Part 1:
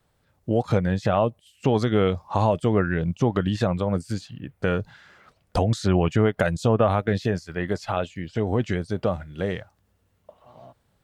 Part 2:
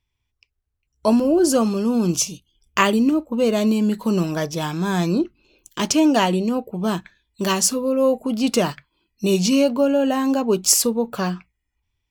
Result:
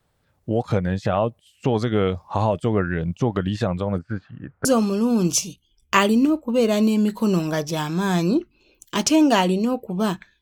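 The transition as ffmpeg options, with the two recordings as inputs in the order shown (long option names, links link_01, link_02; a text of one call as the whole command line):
ffmpeg -i cue0.wav -i cue1.wav -filter_complex "[0:a]asettb=1/sr,asplit=3[link_01][link_02][link_03];[link_01]atrim=end=3.984[link_04];[link_02]atrim=start=3.98:end=4.65,asetpts=PTS-STARTPTS,afade=type=in:duration=0.004:curve=qsin,afade=type=out:start_time=0.666:duration=0.004:curve=qsin,lowpass=frequency=1400:width_type=q:width=3.2[link_05];[link_03]atrim=start=4.646[link_06];[link_04][link_05]acrossfade=duration=0.004:curve1=hsin:curve2=qsin[link_07];[link_07][link_06]acrossfade=duration=0.004:curve1=qsin:curve2=hsin,apad=whole_dur=10.41,atrim=end=10.41,atrim=end=4.652[link_08];[1:a]atrim=start=1.488:end=7.25[link_09];[link_08][link_09]acrossfade=duration=0.004:curve1=hsin:curve2=hsin" out.wav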